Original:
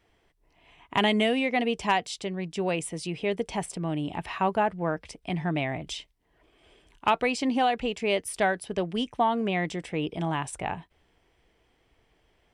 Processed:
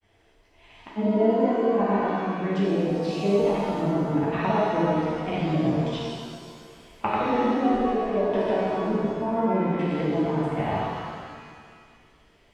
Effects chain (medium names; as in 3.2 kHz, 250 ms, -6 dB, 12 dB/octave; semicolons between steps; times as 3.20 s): low-pass that closes with the level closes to 580 Hz, closed at -25 dBFS; granulator, pitch spread up and down by 0 st; pitch-shifted reverb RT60 1.9 s, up +7 st, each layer -8 dB, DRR -7 dB